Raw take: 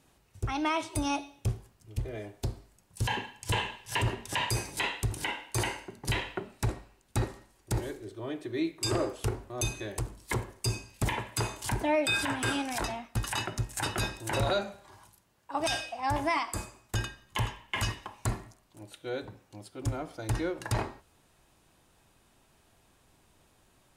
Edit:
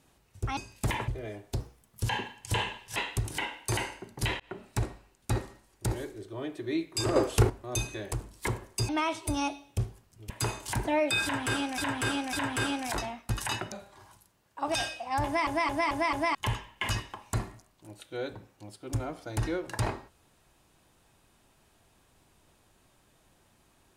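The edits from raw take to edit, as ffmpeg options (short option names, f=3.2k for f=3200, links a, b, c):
-filter_complex "[0:a]asplit=19[a][b][c][d][e][f][g][h][i][j][k][l][m][n][o][p][q][r][s];[a]atrim=end=0.572[t];[b]atrim=start=10.748:end=11.262[u];[c]atrim=start=1.978:end=2.504[v];[d]atrim=start=2.5:end=2.99,asetpts=PTS-STARTPTS,asetrate=52920,aresample=44100[w];[e]atrim=start=2.986:end=3.942[x];[f]atrim=start=4.818:end=6.26,asetpts=PTS-STARTPTS,afade=t=out:st=1.438:d=0.004:c=hsin[y];[g]atrim=start=6.26:end=9.022,asetpts=PTS-STARTPTS,afade=t=in:d=0.33:c=qsin[z];[h]atrim=start=9.018:end=9.362,asetpts=PTS-STARTPTS,volume=8.5dB[aa];[i]atrim=start=9.358:end=10.752[ab];[j]atrim=start=0.568:end=1.982[ac];[k]atrim=start=11.258:end=12.742[ad];[l]atrim=start=12.188:end=12.742[ae];[m]atrim=start=12.188:end=13.582[af];[n]atrim=start=14.638:end=16.392[ag];[o]atrim=start=16.168:end=16.392[ah];[p]atrim=start=16.168:end=16.392[ai];[q]atrim=start=16.168:end=16.392[aj];[r]atrim=start=16.168:end=16.392[ak];[s]atrim=start=17.268[al];[t][u]acrossfade=d=0.004:c1=hsin:c2=hsin[am];[am][v]acrossfade=d=0.004:c1=hsin:c2=hsin[an];[an][w]acrossfade=d=0.004:c1=hsin:c2=hsin[ao];[ao][x]acrossfade=d=0.004:c1=hsin:c2=hsin[ap];[y][z]concat=n=2:v=0:a=1[aq];[ap][aq]acrossfade=d=0.004:c1=hsin:c2=hsin[ar];[ar][aa]acrossfade=d=0.004:c1=hsin:c2=hsin[as];[as][ab]acrossfade=d=0.004:c1=hsin:c2=hsin[at];[at][ac]acrossfade=d=0.004:c1=hsin:c2=hsin[au];[au][ad]acrossfade=d=0.004:c1=hsin:c2=hsin[av];[av][ae]acrossfade=d=0.004:c1=hsin:c2=hsin[aw];[aw][af]acrossfade=d=0.004:c1=hsin:c2=hsin[ax];[ax][ag]acrossfade=d=0.004:c1=hsin:c2=hsin[ay];[ay][ah]acrossfade=d=0.004:c1=hsin:c2=hsin[az];[az][ai]acrossfade=d=0.004:c1=hsin:c2=hsin[ba];[ba][aj]acrossfade=d=0.004:c1=hsin:c2=hsin[bb];[bb][ak]acrossfade=d=0.004:c1=hsin:c2=hsin[bc];[bc][al]acrossfade=d=0.004:c1=hsin:c2=hsin"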